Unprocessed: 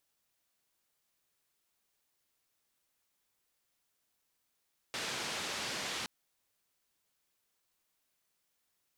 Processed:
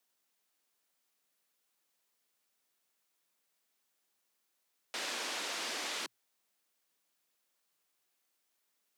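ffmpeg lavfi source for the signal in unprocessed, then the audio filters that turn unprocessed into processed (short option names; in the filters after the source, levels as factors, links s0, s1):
-f lavfi -i "anoisesrc=c=white:d=1.12:r=44100:seed=1,highpass=f=110,lowpass=f=5000,volume=-27.5dB"
-af "afreqshift=110,highpass=200"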